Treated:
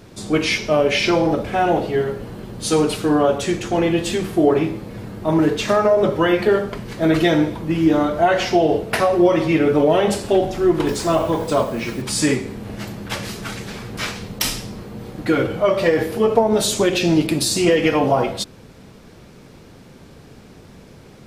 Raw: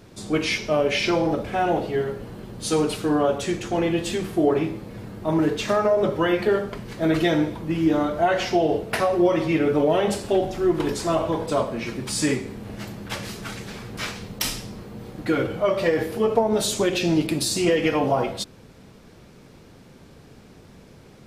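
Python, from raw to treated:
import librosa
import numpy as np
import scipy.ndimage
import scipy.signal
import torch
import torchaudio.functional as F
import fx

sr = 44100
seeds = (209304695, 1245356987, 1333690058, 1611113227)

y = fx.quant_dither(x, sr, seeds[0], bits=8, dither='none', at=(10.87, 12.02))
y = y * 10.0 ** (4.5 / 20.0)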